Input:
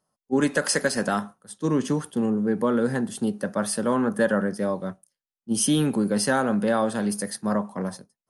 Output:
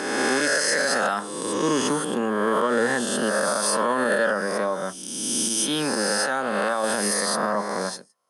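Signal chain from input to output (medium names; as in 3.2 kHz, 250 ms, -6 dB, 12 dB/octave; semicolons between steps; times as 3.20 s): reverse spectral sustain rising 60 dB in 1.60 s; frequency weighting A; 4.32–6.84 s: compression, threshold -25 dBFS, peak gain reduction 8.5 dB; peak limiter -17.5 dBFS, peak gain reduction 10.5 dB; trim +5 dB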